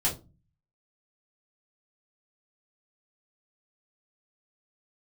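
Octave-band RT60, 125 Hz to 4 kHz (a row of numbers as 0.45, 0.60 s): 0.75, 0.55, 0.30, 0.25, 0.20, 0.20 s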